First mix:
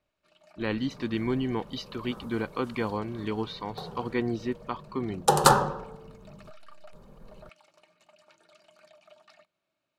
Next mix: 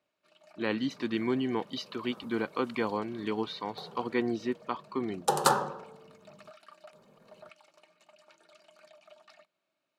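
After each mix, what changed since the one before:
second sound -5.5 dB; master: add high-pass 190 Hz 12 dB/octave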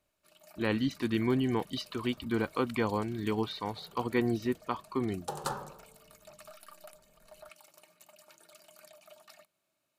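first sound: remove low-pass 4.3 kHz 12 dB/octave; second sound -11.5 dB; master: remove high-pass 190 Hz 12 dB/octave

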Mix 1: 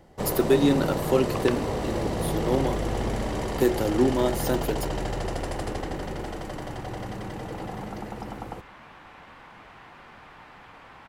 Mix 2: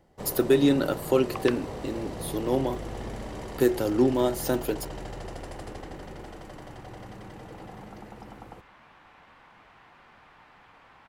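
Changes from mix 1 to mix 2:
first sound -8.5 dB; second sound -6.5 dB

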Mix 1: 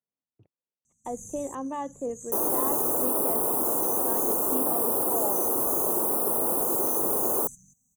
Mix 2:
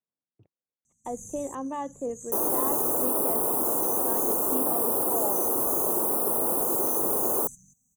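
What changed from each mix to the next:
no change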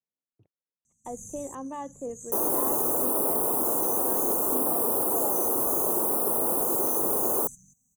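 speech -3.5 dB

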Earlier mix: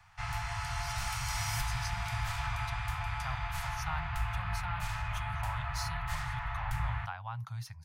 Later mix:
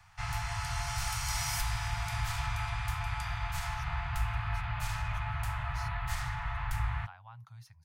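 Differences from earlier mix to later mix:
speech -10.5 dB; background: add tone controls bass +2 dB, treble +4 dB

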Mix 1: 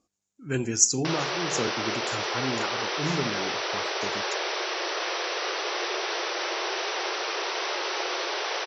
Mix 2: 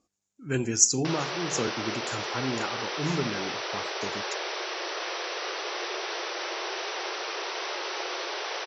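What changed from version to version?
background -3.5 dB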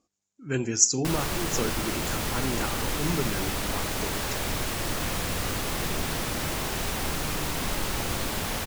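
background: remove brick-wall FIR band-pass 330–6100 Hz

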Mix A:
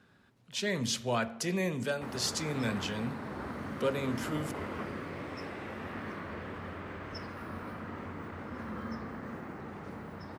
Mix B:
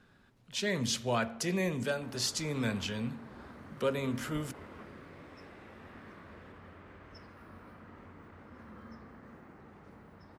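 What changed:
background -11.0 dB; master: remove high-pass 72 Hz

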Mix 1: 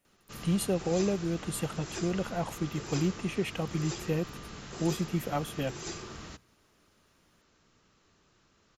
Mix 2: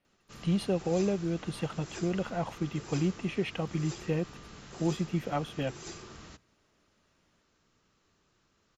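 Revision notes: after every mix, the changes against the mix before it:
speech: add Savitzky-Golay filter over 15 samples; background -4.5 dB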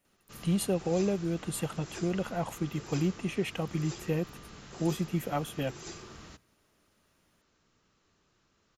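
speech: remove Savitzky-Golay filter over 15 samples

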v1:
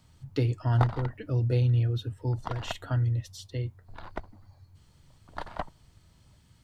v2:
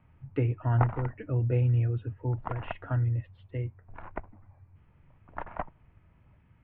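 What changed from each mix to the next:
master: add elliptic low-pass 2.5 kHz, stop band 60 dB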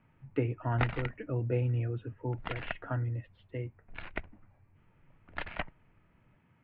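speech: add high-pass 160 Hz 12 dB/octave; background: remove resonant low-pass 1 kHz, resonance Q 2.4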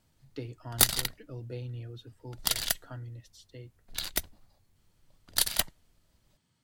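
speech -10.0 dB; master: remove elliptic low-pass 2.5 kHz, stop band 60 dB

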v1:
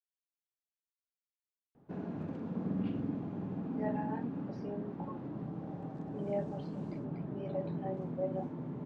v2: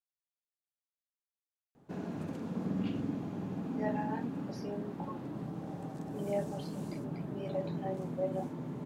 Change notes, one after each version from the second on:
master: remove tape spacing loss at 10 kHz 26 dB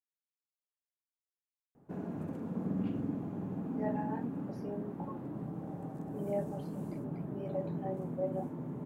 master: add peaking EQ 4.5 kHz -14 dB 2.1 oct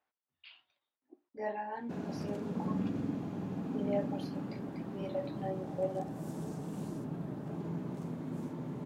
speech: entry -2.40 s; master: add peaking EQ 4.5 kHz +14 dB 2.1 oct

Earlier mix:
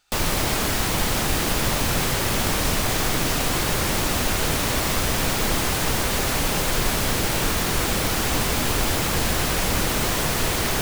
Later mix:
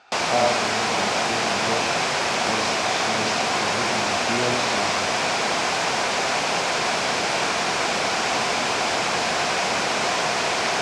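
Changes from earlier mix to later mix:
speech: remove pre-emphasis filter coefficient 0.9; master: add cabinet simulation 250–7300 Hz, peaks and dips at 300 Hz -5 dB, 710 Hz +8 dB, 1 kHz +4 dB, 1.5 kHz +3 dB, 2.4 kHz +5 dB, 5.1 kHz +3 dB

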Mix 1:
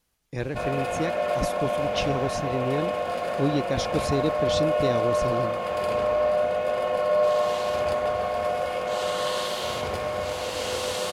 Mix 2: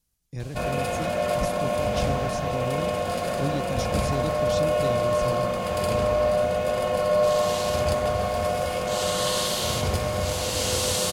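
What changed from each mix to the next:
speech -11.0 dB; master: add tone controls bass +12 dB, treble +11 dB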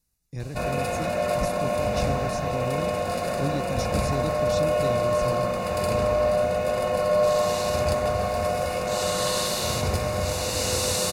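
master: add Butterworth band-stop 3.2 kHz, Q 6.7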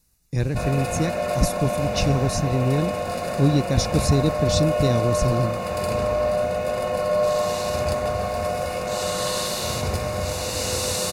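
speech +10.5 dB

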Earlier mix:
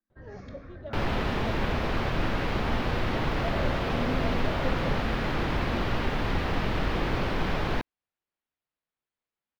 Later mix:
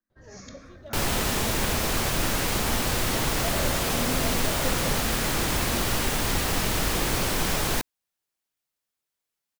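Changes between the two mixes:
first sound -5.0 dB; master: remove distance through air 330 m

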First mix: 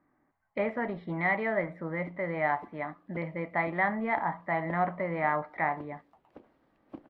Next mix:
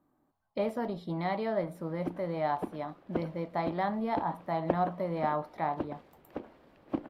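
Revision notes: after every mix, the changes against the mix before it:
speech: remove resonant low-pass 2 kHz, resonance Q 5.8; background +12.0 dB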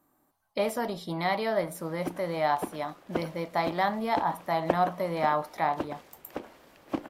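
master: remove FFT filter 230 Hz 0 dB, 4.2 kHz -11 dB, 6.3 kHz -19 dB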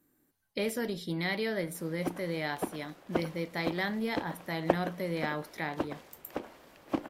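speech: add high-order bell 870 Hz -13 dB 1.3 oct

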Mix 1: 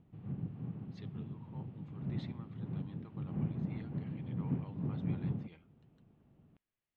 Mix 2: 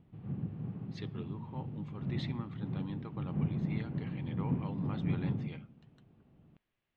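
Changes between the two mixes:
speech +10.0 dB; reverb: on, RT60 0.50 s

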